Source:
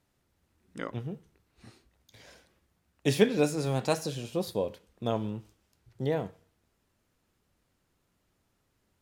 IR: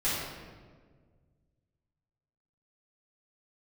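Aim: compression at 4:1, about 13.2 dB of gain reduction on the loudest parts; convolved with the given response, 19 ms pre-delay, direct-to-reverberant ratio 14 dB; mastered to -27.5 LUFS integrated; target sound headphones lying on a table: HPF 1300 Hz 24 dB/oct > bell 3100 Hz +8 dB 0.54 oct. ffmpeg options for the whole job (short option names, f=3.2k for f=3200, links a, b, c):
-filter_complex "[0:a]acompressor=threshold=-32dB:ratio=4,asplit=2[a][b];[1:a]atrim=start_sample=2205,adelay=19[c];[b][c]afir=irnorm=-1:irlink=0,volume=-23.5dB[d];[a][d]amix=inputs=2:normalize=0,highpass=f=1.3k:w=0.5412,highpass=f=1.3k:w=1.3066,equalizer=f=3.1k:t=o:w=0.54:g=8,volume=17.5dB"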